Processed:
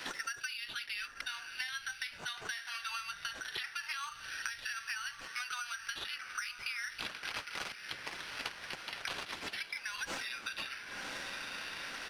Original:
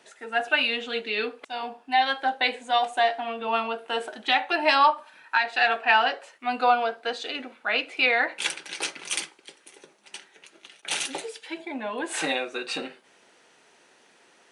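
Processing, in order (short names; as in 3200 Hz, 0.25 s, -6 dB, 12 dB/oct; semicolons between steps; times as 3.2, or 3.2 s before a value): elliptic high-pass 1400 Hz, stop band 70 dB; in parallel at -2.5 dB: limiter -25 dBFS, peak gain reduction 16 dB; on the sum: compressor 4:1, threshold -36 dBFS, peak gain reduction 17 dB; tempo 1.2×; diffused feedback echo 1.048 s, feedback 42%, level -13 dB; careless resampling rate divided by 6×, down none, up zero stuff; tape spacing loss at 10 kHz 26 dB; three-band squash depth 100%; gain +1.5 dB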